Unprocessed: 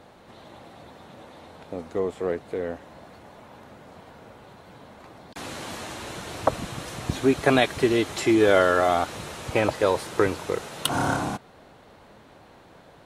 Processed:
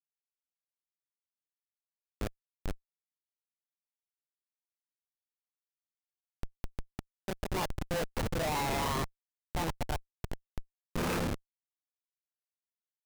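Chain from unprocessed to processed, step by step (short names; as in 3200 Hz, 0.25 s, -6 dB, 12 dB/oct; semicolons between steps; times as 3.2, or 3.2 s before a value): gliding pitch shift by +11 st starting unshifted; auto swell 0.196 s; Schmitt trigger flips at -24.5 dBFS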